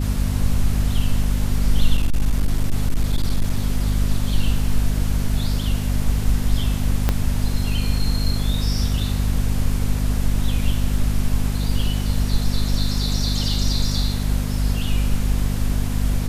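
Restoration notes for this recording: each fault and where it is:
hum 50 Hz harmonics 5 -22 dBFS
1.97–3.98 clipped -13 dBFS
7.09 pop -5 dBFS

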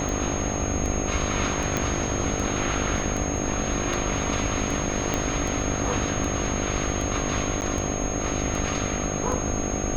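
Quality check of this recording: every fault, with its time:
buzz 50 Hz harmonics 15 -30 dBFS
tick 78 rpm
tone 6500 Hz -32 dBFS
1.77 pop -10 dBFS
5.14 pop -10 dBFS
7.61–7.62 gap 9.3 ms

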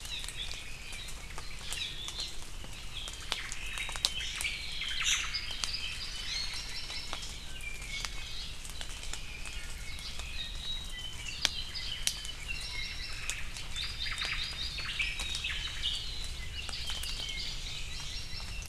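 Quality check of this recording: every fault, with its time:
16.95–17.51 clipped -28 dBFS

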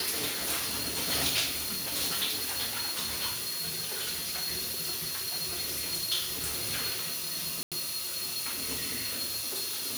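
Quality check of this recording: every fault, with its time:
7.63–7.72 gap 87 ms

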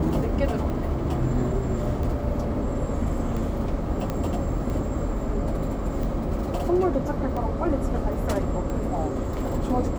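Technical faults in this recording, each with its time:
tick 45 rpm -21 dBFS
4.1 pop -15 dBFS

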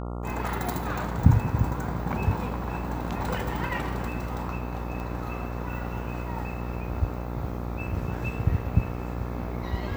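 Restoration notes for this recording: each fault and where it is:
buzz 60 Hz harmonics 23 -33 dBFS
5 pop

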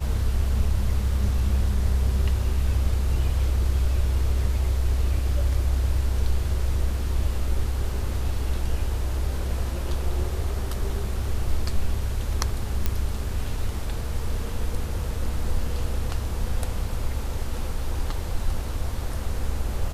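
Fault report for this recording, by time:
12.86 pop -9 dBFS

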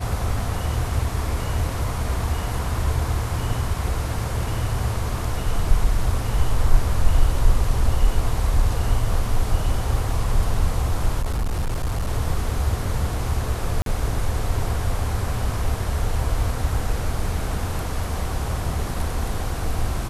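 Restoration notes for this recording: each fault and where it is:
11.22–12.09 clipped -19.5 dBFS
13.82–13.86 gap 42 ms

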